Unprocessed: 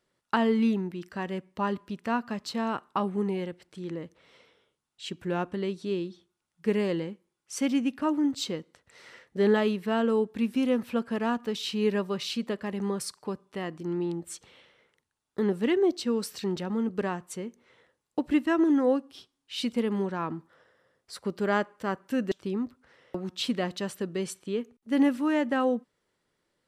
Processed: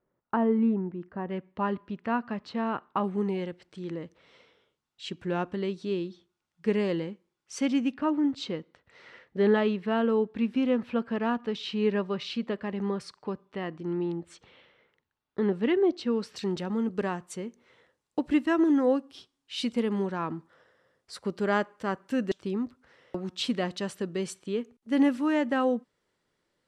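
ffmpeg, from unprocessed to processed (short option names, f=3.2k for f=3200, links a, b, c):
-af "asetnsamples=n=441:p=0,asendcmd='1.3 lowpass f 2700;3.04 lowpass f 6400;7.94 lowpass f 3600;16.36 lowpass f 9200',lowpass=1.1k"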